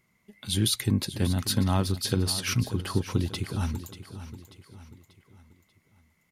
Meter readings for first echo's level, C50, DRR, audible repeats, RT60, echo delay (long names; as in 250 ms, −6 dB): −13.0 dB, no reverb audible, no reverb audible, 4, no reverb audible, 588 ms